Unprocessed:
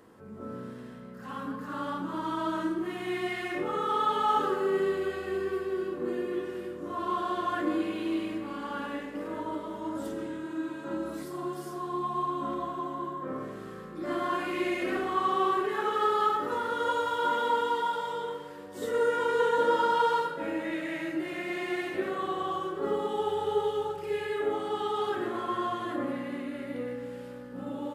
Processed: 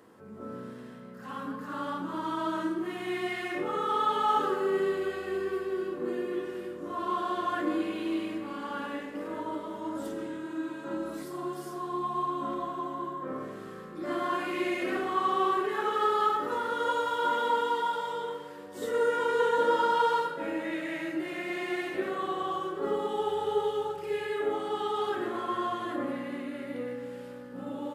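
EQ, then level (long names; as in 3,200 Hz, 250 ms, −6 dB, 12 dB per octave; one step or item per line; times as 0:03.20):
high-pass filter 130 Hz 6 dB per octave
0.0 dB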